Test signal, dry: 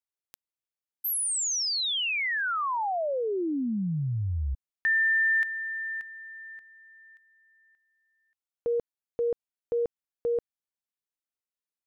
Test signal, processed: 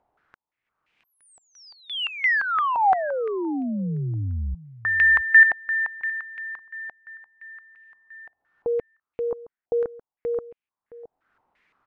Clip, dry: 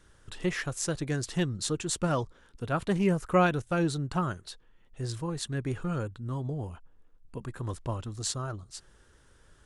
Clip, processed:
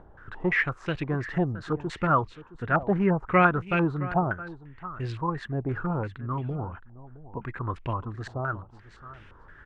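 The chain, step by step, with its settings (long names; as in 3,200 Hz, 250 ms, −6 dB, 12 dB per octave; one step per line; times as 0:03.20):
parametric band 550 Hz −3 dB 0.45 octaves
upward compression, threshold −46 dBFS
on a send: single-tap delay 667 ms −17 dB
on the sum: low-pass on a step sequencer 5.8 Hz 750–2,500 Hz
level +2 dB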